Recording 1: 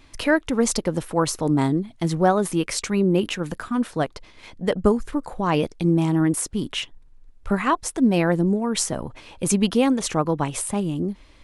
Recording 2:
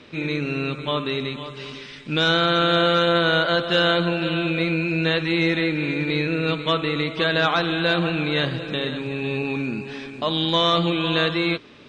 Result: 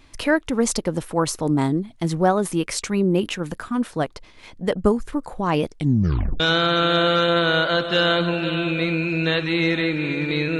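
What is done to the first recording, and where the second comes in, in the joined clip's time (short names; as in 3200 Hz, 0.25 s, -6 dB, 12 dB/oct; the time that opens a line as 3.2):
recording 1
5.76 tape stop 0.64 s
6.4 switch to recording 2 from 2.19 s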